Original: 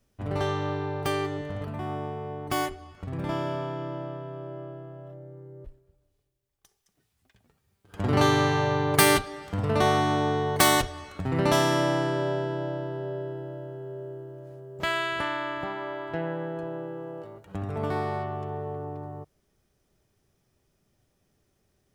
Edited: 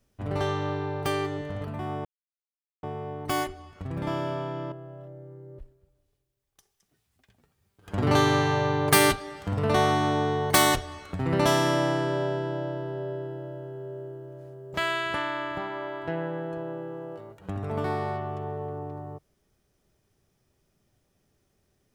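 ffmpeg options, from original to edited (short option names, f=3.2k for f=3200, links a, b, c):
-filter_complex "[0:a]asplit=3[a][b][c];[a]atrim=end=2.05,asetpts=PTS-STARTPTS,afade=t=out:st=2.046:d=0.004:c=hsin,apad=pad_dur=0.78[d];[b]atrim=start=2.05:end=3.942,asetpts=PTS-STARTPTS,afade=t=in:d=0.004:c=hsin[e];[c]atrim=start=4.778[f];[d][e]concat=n=2:v=0:a=1[g];[g][f]acrossfade=d=0.004:c1=hsin:c2=hsin"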